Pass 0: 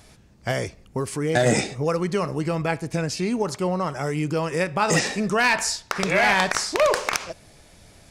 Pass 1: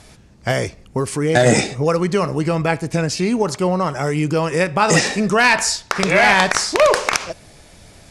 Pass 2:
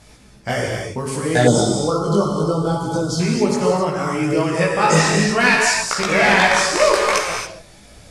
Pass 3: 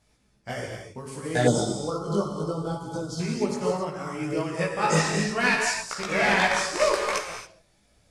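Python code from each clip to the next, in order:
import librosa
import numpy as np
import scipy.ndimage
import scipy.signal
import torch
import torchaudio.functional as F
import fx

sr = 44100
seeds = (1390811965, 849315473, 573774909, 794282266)

y1 = scipy.signal.sosfilt(scipy.signal.butter(4, 12000.0, 'lowpass', fs=sr, output='sos'), x)
y1 = F.gain(torch.from_numpy(y1), 6.0).numpy()
y2 = fx.rev_gated(y1, sr, seeds[0], gate_ms=300, shape='flat', drr_db=-0.5)
y2 = fx.chorus_voices(y2, sr, voices=2, hz=0.68, base_ms=18, depth_ms=2.6, mix_pct=50)
y2 = fx.spec_box(y2, sr, start_s=1.47, length_s=1.73, low_hz=1500.0, high_hz=3000.0, gain_db=-29)
y3 = fx.upward_expand(y2, sr, threshold_db=-36.0, expansion=1.5)
y3 = F.gain(torch.from_numpy(y3), -6.0).numpy()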